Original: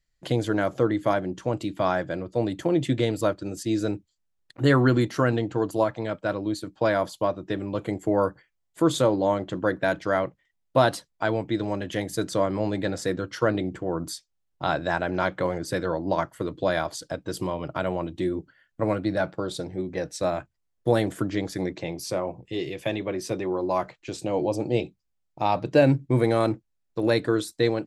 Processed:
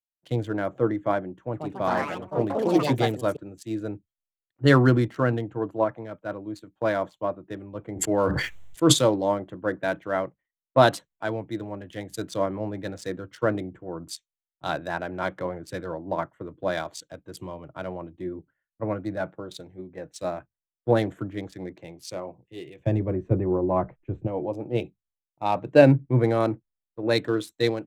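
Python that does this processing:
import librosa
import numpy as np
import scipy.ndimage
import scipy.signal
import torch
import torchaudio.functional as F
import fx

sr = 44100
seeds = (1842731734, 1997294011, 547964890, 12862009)

y = fx.echo_pitch(x, sr, ms=164, semitones=4, count=3, db_per_echo=-3.0, at=(1.36, 3.68))
y = fx.sustainer(y, sr, db_per_s=26.0, at=(7.95, 8.92), fade=0.02)
y = fx.tilt_eq(y, sr, slope=-3.5, at=(22.78, 24.26), fade=0.02)
y = fx.wiener(y, sr, points=9)
y = fx.band_widen(y, sr, depth_pct=100)
y = F.gain(torch.from_numpy(y), -2.5).numpy()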